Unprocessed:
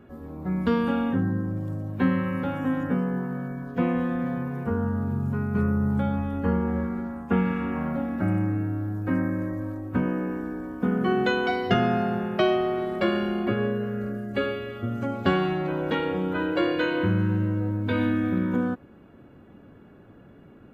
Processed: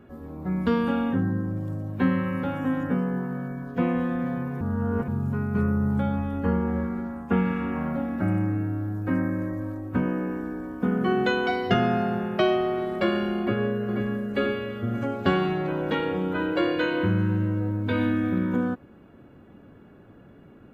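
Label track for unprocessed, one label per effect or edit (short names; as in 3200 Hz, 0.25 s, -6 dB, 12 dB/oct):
4.610000	5.080000	reverse
13.390000	14.050000	echo throw 0.49 s, feedback 65%, level -6 dB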